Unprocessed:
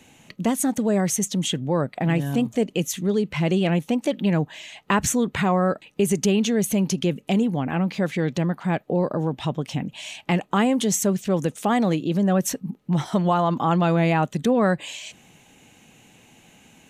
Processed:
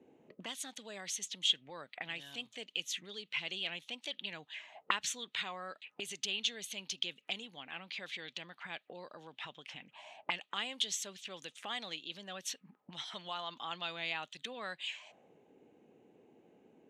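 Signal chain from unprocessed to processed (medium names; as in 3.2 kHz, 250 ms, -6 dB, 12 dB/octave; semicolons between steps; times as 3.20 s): auto-wah 370–3500 Hz, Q 2.9, up, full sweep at -22 dBFS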